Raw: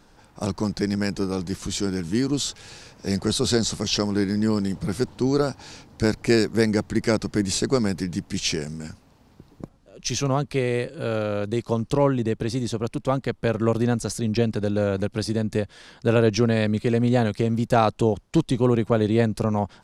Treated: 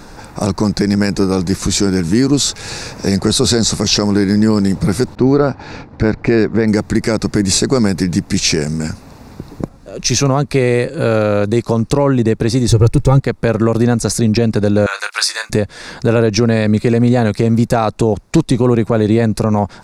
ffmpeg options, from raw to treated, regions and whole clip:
-filter_complex "[0:a]asettb=1/sr,asplit=3[a][b][c];[a]atrim=end=5.154[d];[b]atrim=start=5.15:end=6.68,asetpts=PTS-STARTPTS,afade=t=in:d=0.004:c=qsin,afade=t=out:st=1.526:d=0.004:c=qsin,lowpass=2.6k,agate=range=-33dB:threshold=-44dB:ratio=3:release=100:detection=peak[e];[c]atrim=start=6.676[f];[d][e]acrossfade=d=0.004:c1=hsin:c2=qsin[g];[g][f]acrossfade=d=0.004:c1=qsin:c2=hsin,asettb=1/sr,asplit=3[h][i][j];[h]atrim=end=12.684[k];[i]atrim=start=12.68:end=13.2,asetpts=PTS-STARTPTS,afade=t=in:d=0.004:c=qsin,afade=t=out:st=0.516:d=0.004:c=qsin,bass=f=250:g=14,treble=f=4k:g=3,aecho=1:1:2.3:0.78,atrim=end_sample=22932,aeval=exprs='sgn(val(0))*max(abs(val(0))-0.00316,0)':c=same[l];[j]atrim=start=13.196[m];[k][l]acrossfade=d=0.004:c1=hsin:c2=qsin[n];[n][m]acrossfade=d=0.004:c1=qsin:c2=hsin,asettb=1/sr,asplit=3[o][p][q];[o]atrim=end=14.864[r];[p]atrim=start=14.86:end=15.5,asetpts=PTS-STARTPTS,afade=t=in:d=0.004:c=qsin,afade=t=out:st=0.636:d=0.004:c=qsin,highpass=f=1.1k:w=0.5412,highpass=f=1.1k:w=1.3066,asplit=2[s][t];[t]adelay=29,volume=-10.5dB[u];[s][u]amix=inputs=2:normalize=0,atrim=end_sample=28224,acontrast=33[v];[q]atrim=start=15.496[w];[r][v]acrossfade=d=0.004:c1=hsin:c2=qsin[x];[x][w]acrossfade=d=0.004:c1=qsin:c2=hsin,equalizer=f=3.1k:w=6.9:g=-12,acompressor=threshold=-41dB:ratio=1.5,alimiter=level_in=20dB:limit=-1dB:release=50:level=0:latency=1,volume=-1dB"

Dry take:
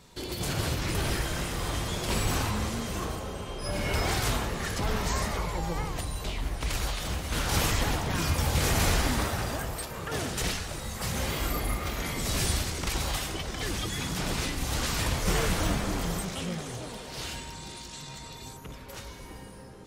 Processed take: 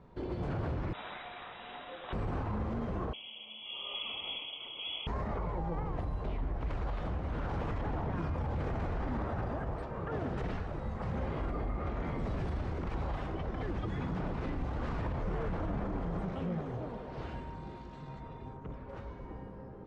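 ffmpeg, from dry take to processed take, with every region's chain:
-filter_complex "[0:a]asettb=1/sr,asplit=3[a][b][c];[a]atrim=end=0.934[d];[b]atrim=start=0.93:end=2.13,asetpts=PTS-STARTPTS,afade=t=in:d=0.004:c=qsin,afade=t=out:st=1.196:d=0.004:c=qsin,equalizer=f=77:w=0.38:g=-8.5,lowpass=f=3.3k:t=q:w=0.5098,lowpass=f=3.3k:t=q:w=0.6013,lowpass=f=3.3k:t=q:w=0.9,lowpass=f=3.3k:t=q:w=2.563,afreqshift=-3900[e];[c]atrim=start=2.126[f];[d][e]acrossfade=d=0.004:c1=hsin:c2=qsin[g];[g][f]acrossfade=d=0.004:c1=qsin:c2=hsin,asettb=1/sr,asplit=3[h][i][j];[h]atrim=end=3.134[k];[i]atrim=start=3.13:end=5.07,asetpts=PTS-STARTPTS,afade=t=in:d=0.004:c=qsin,afade=t=out:st=1.936:d=0.004:c=qsin,asuperstop=centerf=1700:order=4:qfactor=1.3,tiltshelf=f=1.3k:g=8,lowpass=f=2.9k:t=q:w=0.5098,lowpass=f=2.9k:t=q:w=0.6013,lowpass=f=2.9k:t=q:w=0.9,lowpass=f=2.9k:t=q:w=2.563,afreqshift=-3400[l];[j]atrim=start=5.066[m];[k][l]acrossfade=d=0.004:c1=hsin:c2=qsin[n];[n][m]acrossfade=d=0.004:c1=qsin:c2=hsin,asettb=1/sr,asplit=3[o][p][q];[o]atrim=end=18.204[r];[p]atrim=start=18.2:end=18.61,asetpts=PTS-STARTPTS,afade=t=in:d=0.004:c=qsin,afade=t=out:st=0.406:d=0.004:c=qsin,acrossover=split=5100[s][t];[t]acompressor=threshold=-59dB:ratio=4:attack=1:release=60[u];[s][u]amix=inputs=2:normalize=0,bandreject=f=4.3k:w=12[v];[q]atrim=start=18.606[w];[r][v]acrossfade=d=0.004:c1=hsin:c2=qsin[x];[x][w]acrossfade=d=0.004:c1=qsin:c2=hsin,lowpass=1.1k,alimiter=level_in=3.5dB:limit=-24dB:level=0:latency=1:release=38,volume=-3.5dB"

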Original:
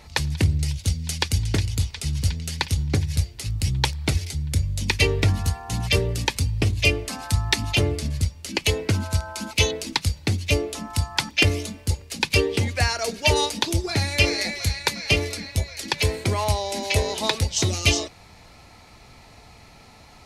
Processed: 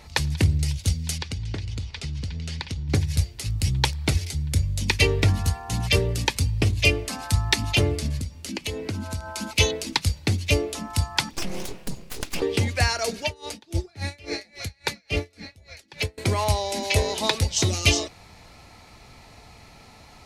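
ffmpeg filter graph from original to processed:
-filter_complex "[0:a]asettb=1/sr,asplit=3[a][b][c];[a]atrim=end=1.184[d];[b]atrim=start=1.18:end=2.89,asetpts=PTS-STARTPTS,afade=t=in:d=0.004:c=qsin,afade=t=out:st=1.706:d=0.004:c=qsin,lowpass=4.9k,acompressor=threshold=-26dB:ratio=10:attack=3.2:release=140:knee=1:detection=peak[e];[c]atrim=start=2.886[f];[d][e]acrossfade=d=0.004:c1=hsin:c2=qsin[g];[g][f]acrossfade=d=0.004:c1=qsin:c2=hsin,asettb=1/sr,asplit=3[h][i][j];[h]atrim=end=8.194[k];[i]atrim=start=8.19:end=9.31,asetpts=PTS-STARTPTS,afade=t=in:d=0.004:c=qsin,afade=t=out:st=1.116:d=0.004:c=qsin,equalizer=f=250:w=1.5:g=6.5,acompressor=threshold=-30dB:ratio=2.5:attack=3.2:release=140:knee=1:detection=peak[l];[j]atrim=start=9.306[m];[k][l]acrossfade=d=0.004:c1=hsin:c2=qsin[n];[n][m]acrossfade=d=0.004:c1=qsin:c2=hsin,asettb=1/sr,asplit=3[o][p][q];[o]atrim=end=11.334[r];[p]atrim=start=11.33:end=12.42,asetpts=PTS-STARTPTS,afade=t=in:d=0.004:c=qsin,afade=t=out:st=1.086:d=0.004:c=qsin,equalizer=f=130:t=o:w=0.87:g=8,acompressor=threshold=-23dB:ratio=6:attack=3.2:release=140:knee=1:detection=peak,aeval=exprs='abs(val(0))':c=same[s];[q]atrim=start=12.416[t];[r][s]acrossfade=d=0.004:c1=hsin:c2=qsin[u];[u][t]acrossfade=d=0.004:c1=qsin:c2=hsin,asettb=1/sr,asplit=3[v][w][x];[v]atrim=end=13.234[y];[w]atrim=start=13.23:end=16.18,asetpts=PTS-STARTPTS,afade=t=in:d=0.004:c=qsin,afade=t=out:st=2.946:d=0.004:c=qsin,highshelf=f=4.1k:g=-6,bandreject=f=1k:w=8.8,aeval=exprs='val(0)*pow(10,-30*(0.5-0.5*cos(2*PI*3.6*n/s))/20)':c=same[z];[x]atrim=start=16.176[aa];[y][z]acrossfade=d=0.004:c1=hsin:c2=qsin[ab];[ab][aa]acrossfade=d=0.004:c1=qsin:c2=hsin"

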